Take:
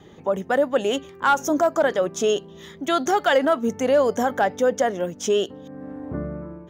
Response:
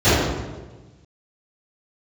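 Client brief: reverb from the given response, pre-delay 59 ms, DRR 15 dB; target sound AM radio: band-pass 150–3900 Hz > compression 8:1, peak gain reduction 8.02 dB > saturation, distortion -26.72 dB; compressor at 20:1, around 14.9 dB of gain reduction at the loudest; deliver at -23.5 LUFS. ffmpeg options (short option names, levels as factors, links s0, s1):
-filter_complex "[0:a]acompressor=threshold=0.0355:ratio=20,asplit=2[s0][s1];[1:a]atrim=start_sample=2205,adelay=59[s2];[s1][s2]afir=irnorm=-1:irlink=0,volume=0.00891[s3];[s0][s3]amix=inputs=2:normalize=0,highpass=150,lowpass=3900,acompressor=threshold=0.02:ratio=8,asoftclip=threshold=0.0596,volume=6.31"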